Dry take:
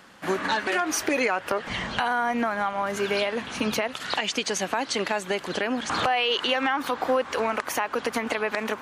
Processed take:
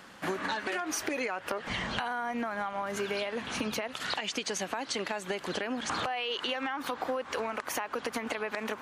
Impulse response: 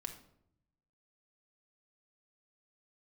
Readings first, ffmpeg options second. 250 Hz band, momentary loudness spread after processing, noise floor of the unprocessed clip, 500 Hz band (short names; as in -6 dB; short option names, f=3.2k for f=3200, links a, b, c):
-7.0 dB, 3 LU, -42 dBFS, -8.0 dB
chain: -af "acompressor=threshold=-30dB:ratio=6"